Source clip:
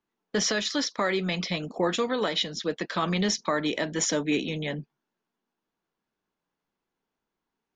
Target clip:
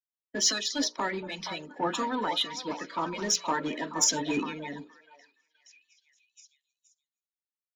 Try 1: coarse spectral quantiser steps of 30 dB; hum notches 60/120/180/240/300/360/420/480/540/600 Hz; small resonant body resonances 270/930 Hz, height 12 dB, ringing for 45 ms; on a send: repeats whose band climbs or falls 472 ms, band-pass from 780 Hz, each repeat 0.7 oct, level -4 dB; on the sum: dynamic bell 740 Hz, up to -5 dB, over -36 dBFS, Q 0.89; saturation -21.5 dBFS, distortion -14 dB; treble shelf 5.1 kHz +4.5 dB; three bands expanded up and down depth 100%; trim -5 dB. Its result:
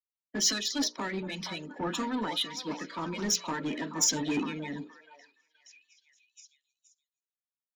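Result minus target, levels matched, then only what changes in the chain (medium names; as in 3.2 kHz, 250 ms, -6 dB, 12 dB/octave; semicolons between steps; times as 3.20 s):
saturation: distortion +7 dB; 1 kHz band -4.0 dB
change: dynamic bell 190 Hz, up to -5 dB, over -36 dBFS, Q 0.89; change: saturation -15.5 dBFS, distortion -21 dB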